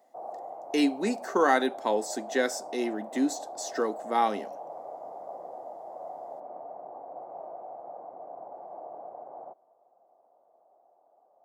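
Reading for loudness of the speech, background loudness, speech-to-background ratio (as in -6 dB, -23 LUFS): -28.5 LUFS, -42.0 LUFS, 13.5 dB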